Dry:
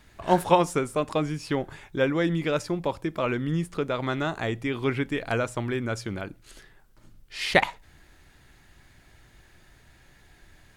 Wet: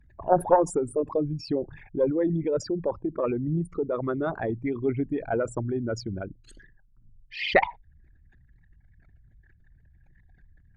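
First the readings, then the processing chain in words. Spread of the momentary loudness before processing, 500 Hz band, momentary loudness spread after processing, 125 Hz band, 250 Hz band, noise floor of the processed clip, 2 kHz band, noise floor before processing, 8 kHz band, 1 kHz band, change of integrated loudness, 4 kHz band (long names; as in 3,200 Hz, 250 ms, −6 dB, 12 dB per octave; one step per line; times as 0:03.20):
10 LU, +1.5 dB, 10 LU, −2.0 dB, −0.5 dB, −60 dBFS, −4.0 dB, −57 dBFS, −3.0 dB, −1.0 dB, −0.5 dB, −5.5 dB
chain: spectral envelope exaggerated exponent 3
harmonic generator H 2 −15 dB, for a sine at −5 dBFS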